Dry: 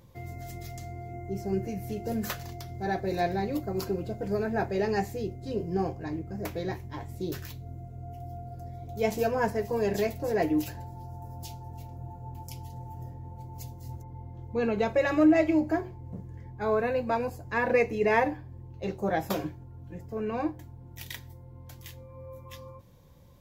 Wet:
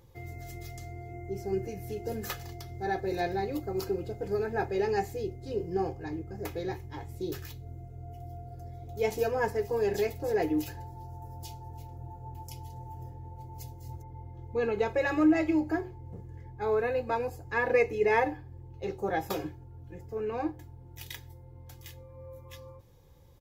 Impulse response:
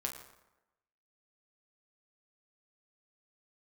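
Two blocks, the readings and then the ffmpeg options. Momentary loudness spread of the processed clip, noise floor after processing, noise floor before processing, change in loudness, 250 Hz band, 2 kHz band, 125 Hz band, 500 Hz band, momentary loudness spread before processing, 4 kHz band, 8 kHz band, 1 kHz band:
18 LU, -49 dBFS, -47 dBFS, -1.5 dB, -3.0 dB, -1.0 dB, -3.0 dB, -1.0 dB, 18 LU, -2.0 dB, -2.0 dB, -1.5 dB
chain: -af "aecho=1:1:2.4:0.53,volume=-3dB"

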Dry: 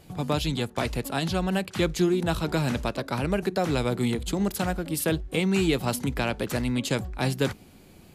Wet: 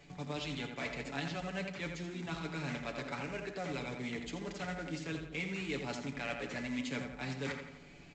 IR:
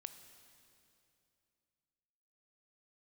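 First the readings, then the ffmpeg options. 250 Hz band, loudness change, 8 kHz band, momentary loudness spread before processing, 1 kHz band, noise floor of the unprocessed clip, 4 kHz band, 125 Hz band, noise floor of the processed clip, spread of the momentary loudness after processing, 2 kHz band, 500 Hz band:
-14.0 dB, -13.0 dB, -16.0 dB, 5 LU, -12.0 dB, -52 dBFS, -11.5 dB, -14.5 dB, -55 dBFS, 3 LU, -7.5 dB, -14.5 dB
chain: -filter_complex "[0:a]areverse,acompressor=threshold=-31dB:ratio=16,areverse,equalizer=f=2.1k:t=o:w=0.71:g=10[a];[1:a]atrim=start_sample=2205,afade=t=out:st=0.2:d=0.01,atrim=end_sample=9261,asetrate=74970,aresample=44100[b];[a][b]afir=irnorm=-1:irlink=0,acrossover=split=140[c][d];[c]acompressor=threshold=-55dB:ratio=6[e];[e][d]amix=inputs=2:normalize=0,equalizer=f=110:t=o:w=0.27:g=-10,aecho=1:1:7:0.62,aresample=16000,acrusher=bits=4:mode=log:mix=0:aa=0.000001,aresample=44100,asplit=2[f][g];[g]adelay=84,lowpass=f=3.2k:p=1,volume=-6dB,asplit=2[h][i];[i]adelay=84,lowpass=f=3.2k:p=1,volume=0.54,asplit=2[j][k];[k]adelay=84,lowpass=f=3.2k:p=1,volume=0.54,asplit=2[l][m];[m]adelay=84,lowpass=f=3.2k:p=1,volume=0.54,asplit=2[n][o];[o]adelay=84,lowpass=f=3.2k:p=1,volume=0.54,asplit=2[p][q];[q]adelay=84,lowpass=f=3.2k:p=1,volume=0.54,asplit=2[r][s];[s]adelay=84,lowpass=f=3.2k:p=1,volume=0.54[t];[f][h][j][l][n][p][r][t]amix=inputs=8:normalize=0,volume=3dB"

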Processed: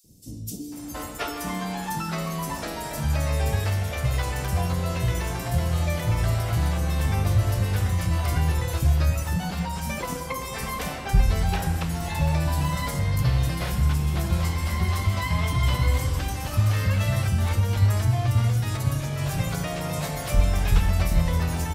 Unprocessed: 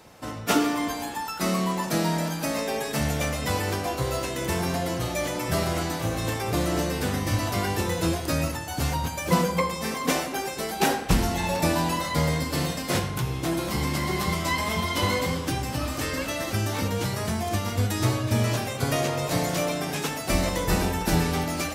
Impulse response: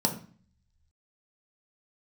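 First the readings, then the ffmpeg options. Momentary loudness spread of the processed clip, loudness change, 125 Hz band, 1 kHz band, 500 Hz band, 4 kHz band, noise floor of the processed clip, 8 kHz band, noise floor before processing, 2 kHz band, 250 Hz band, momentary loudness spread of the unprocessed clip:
8 LU, +1.0 dB, +6.0 dB, -3.5 dB, -5.5 dB, -4.0 dB, -34 dBFS, -3.5 dB, -33 dBFS, -3.0 dB, -4.0 dB, 4 LU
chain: -filter_complex "[0:a]acompressor=threshold=-27dB:ratio=6,asubboost=boost=6.5:cutoff=110,acrossover=split=310|5300[a][b][c];[a]adelay=40[d];[b]adelay=720[e];[d][e][c]amix=inputs=3:normalize=0,volume=2dB"

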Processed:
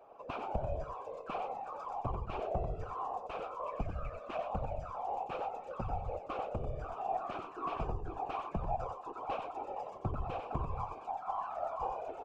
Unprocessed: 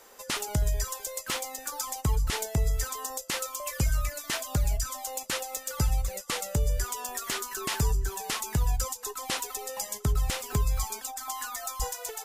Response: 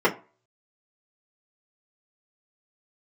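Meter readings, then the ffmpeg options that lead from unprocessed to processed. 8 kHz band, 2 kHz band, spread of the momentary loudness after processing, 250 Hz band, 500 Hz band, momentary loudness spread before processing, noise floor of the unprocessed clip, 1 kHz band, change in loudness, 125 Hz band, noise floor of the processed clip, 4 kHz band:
under -40 dB, -15.0 dB, 4 LU, -7.0 dB, -1.0 dB, 5 LU, -46 dBFS, +0.5 dB, -9.0 dB, -11.5 dB, -49 dBFS, -23.0 dB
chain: -filter_complex "[0:a]asplit=3[a][b][c];[a]bandpass=f=730:t=q:w=8,volume=0dB[d];[b]bandpass=f=1.09k:t=q:w=8,volume=-6dB[e];[c]bandpass=f=2.44k:t=q:w=8,volume=-9dB[f];[d][e][f]amix=inputs=3:normalize=0,highshelf=f=2.2k:g=-9.5,aecho=1:1:93:0.501,afftfilt=real='hypot(re,im)*cos(2*PI*random(0))':imag='hypot(re,im)*sin(2*PI*random(1))':win_size=512:overlap=0.75,aemphasis=mode=reproduction:type=riaa,volume=13.5dB"

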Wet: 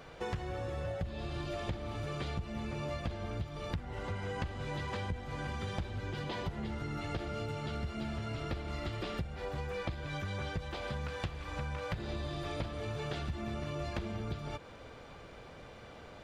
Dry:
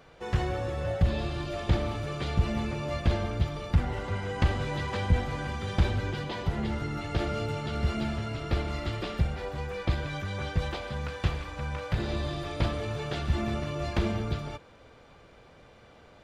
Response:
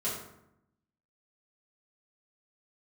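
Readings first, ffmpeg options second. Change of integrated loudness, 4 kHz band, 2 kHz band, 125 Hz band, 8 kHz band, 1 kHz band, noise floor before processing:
-8.0 dB, -6.5 dB, -6.0 dB, -9.0 dB, -6.0 dB, -6.0 dB, -55 dBFS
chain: -af "acompressor=threshold=-38dB:ratio=10,volume=3.5dB"

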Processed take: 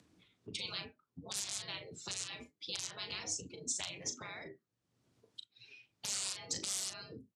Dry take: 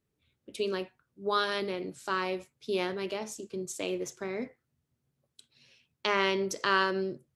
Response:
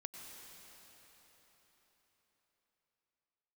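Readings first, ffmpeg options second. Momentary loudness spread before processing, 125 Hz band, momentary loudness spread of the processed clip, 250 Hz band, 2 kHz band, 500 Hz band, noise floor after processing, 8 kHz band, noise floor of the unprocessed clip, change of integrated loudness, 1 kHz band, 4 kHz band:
12 LU, -9.0 dB, 17 LU, -16.5 dB, -14.5 dB, -21.0 dB, under -85 dBFS, +7.0 dB, -82 dBFS, -8.0 dB, -20.0 dB, -3.0 dB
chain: -filter_complex "[0:a]aeval=exprs='(mod(8.91*val(0)+1,2)-1)/8.91':c=same,lowpass=6.6k,afftdn=nr=19:nf=-53,afftfilt=real='re*lt(hypot(re,im),0.0282)':imag='im*lt(hypot(re,im),0.0282)':win_size=1024:overlap=0.75,equalizer=f=2k:w=0.62:g=-4.5,acrossover=split=200|3000[a][b][c];[b]acompressor=threshold=-58dB:ratio=4[d];[a][d][c]amix=inputs=3:normalize=0,alimiter=level_in=9.5dB:limit=-24dB:level=0:latency=1:release=125,volume=-9.5dB,acompressor=mode=upward:threshold=-56dB:ratio=2.5,afreqshift=-120,highpass=f=94:w=0.5412,highpass=f=94:w=1.3066,asplit=2[e][f];[f]adelay=38,volume=-10dB[g];[e][g]amix=inputs=2:normalize=0,volume=10.5dB"

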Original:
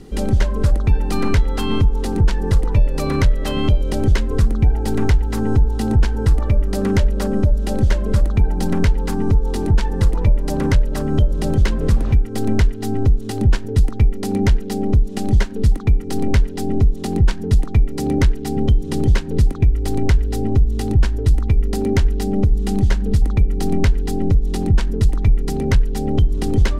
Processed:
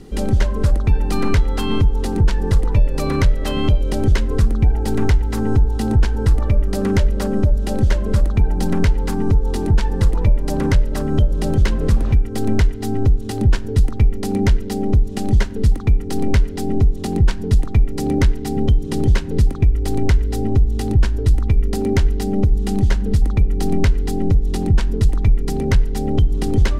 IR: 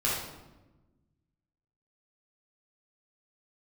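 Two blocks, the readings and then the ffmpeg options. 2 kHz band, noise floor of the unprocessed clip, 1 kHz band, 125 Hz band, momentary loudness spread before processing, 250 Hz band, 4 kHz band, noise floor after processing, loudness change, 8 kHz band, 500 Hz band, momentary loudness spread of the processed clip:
0.0 dB, -26 dBFS, 0.0 dB, 0.0 dB, 2 LU, 0.0 dB, 0.0 dB, -25 dBFS, 0.0 dB, 0.0 dB, 0.0 dB, 2 LU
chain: -filter_complex "[0:a]asplit=2[a][b];[1:a]atrim=start_sample=2205,adelay=43[c];[b][c]afir=irnorm=-1:irlink=0,volume=-32dB[d];[a][d]amix=inputs=2:normalize=0"

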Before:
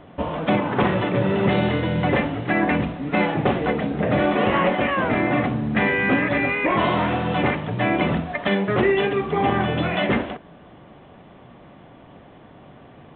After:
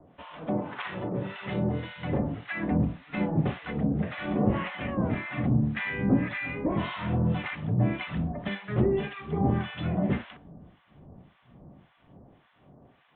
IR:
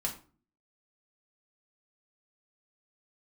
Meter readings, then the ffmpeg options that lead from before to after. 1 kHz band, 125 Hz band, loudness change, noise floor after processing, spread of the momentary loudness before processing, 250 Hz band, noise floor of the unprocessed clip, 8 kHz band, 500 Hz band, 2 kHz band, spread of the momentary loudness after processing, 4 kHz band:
-14.0 dB, -3.0 dB, -8.0 dB, -64 dBFS, 4 LU, -6.0 dB, -47 dBFS, n/a, -11.5 dB, -12.0 dB, 7 LU, -12.0 dB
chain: -filter_complex "[0:a]bandreject=f=57.08:t=h:w=4,bandreject=f=114.16:t=h:w=4,bandreject=f=171.24:t=h:w=4,bandreject=f=228.32:t=h:w=4,bandreject=f=285.4:t=h:w=4,bandreject=f=342.48:t=h:w=4,bandreject=f=399.56:t=h:w=4,bandreject=f=456.64:t=h:w=4,bandreject=f=513.72:t=h:w=4,bandreject=f=570.8:t=h:w=4,bandreject=f=627.88:t=h:w=4,bandreject=f=684.96:t=h:w=4,bandreject=f=742.04:t=h:w=4,bandreject=f=799.12:t=h:w=4,bandreject=f=856.2:t=h:w=4,bandreject=f=913.28:t=h:w=4,bandreject=f=970.36:t=h:w=4,bandreject=f=1.02744k:t=h:w=4,bandreject=f=1.08452k:t=h:w=4,bandreject=f=1.1416k:t=h:w=4,bandreject=f=1.19868k:t=h:w=4,bandreject=f=1.25576k:t=h:w=4,bandreject=f=1.31284k:t=h:w=4,bandreject=f=1.36992k:t=h:w=4,acrossover=split=220|560|1700[a][b][c][d];[a]dynaudnorm=f=640:g=7:m=13dB[e];[e][b][c][d]amix=inputs=4:normalize=0,acrossover=split=1000[f][g];[f]aeval=exprs='val(0)*(1-1/2+1/2*cos(2*PI*1.8*n/s))':c=same[h];[g]aeval=exprs='val(0)*(1-1/2-1/2*cos(2*PI*1.8*n/s))':c=same[i];[h][i]amix=inputs=2:normalize=0,volume=-7.5dB"

